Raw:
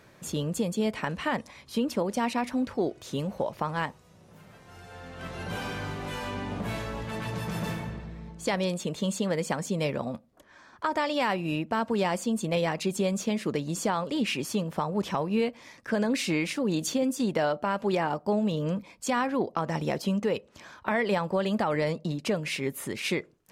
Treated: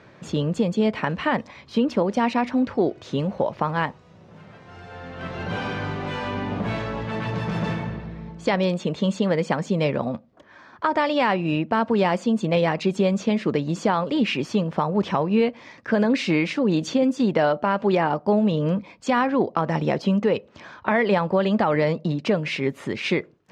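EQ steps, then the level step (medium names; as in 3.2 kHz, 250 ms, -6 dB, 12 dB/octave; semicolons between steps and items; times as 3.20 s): high-pass 73 Hz; distance through air 160 m; +7.0 dB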